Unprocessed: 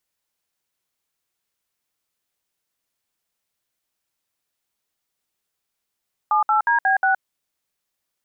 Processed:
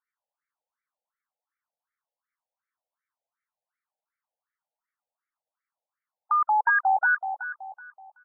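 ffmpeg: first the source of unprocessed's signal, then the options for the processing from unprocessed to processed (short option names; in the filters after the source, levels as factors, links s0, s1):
-f lavfi -i "aevalsrc='0.133*clip(min(mod(t,0.18),0.118-mod(t,0.18))/0.002,0,1)*(eq(floor(t/0.18),0)*(sin(2*PI*852*mod(t,0.18))+sin(2*PI*1209*mod(t,0.18)))+eq(floor(t/0.18),1)*(sin(2*PI*852*mod(t,0.18))+sin(2*PI*1336*mod(t,0.18)))+eq(floor(t/0.18),2)*(sin(2*PI*941*mod(t,0.18))+sin(2*PI*1633*mod(t,0.18)))+eq(floor(t/0.18),3)*(sin(2*PI*770*mod(t,0.18))+sin(2*PI*1633*mod(t,0.18)))+eq(floor(t/0.18),4)*(sin(2*PI*770*mod(t,0.18))+sin(2*PI*1477*mod(t,0.18))))':d=0.9:s=44100"
-filter_complex "[0:a]asplit=2[s0][s1];[s1]adelay=377,lowpass=f=990:p=1,volume=0.447,asplit=2[s2][s3];[s3]adelay=377,lowpass=f=990:p=1,volume=0.46,asplit=2[s4][s5];[s5]adelay=377,lowpass=f=990:p=1,volume=0.46,asplit=2[s6][s7];[s7]adelay=377,lowpass=f=990:p=1,volume=0.46,asplit=2[s8][s9];[s9]adelay=377,lowpass=f=990:p=1,volume=0.46[s10];[s2][s4][s6][s8][s10]amix=inputs=5:normalize=0[s11];[s0][s11]amix=inputs=2:normalize=0,afftfilt=real='re*between(b*sr/1024,620*pow(1700/620,0.5+0.5*sin(2*PI*2.7*pts/sr))/1.41,620*pow(1700/620,0.5+0.5*sin(2*PI*2.7*pts/sr))*1.41)':imag='im*between(b*sr/1024,620*pow(1700/620,0.5+0.5*sin(2*PI*2.7*pts/sr))/1.41,620*pow(1700/620,0.5+0.5*sin(2*PI*2.7*pts/sr))*1.41)':win_size=1024:overlap=0.75"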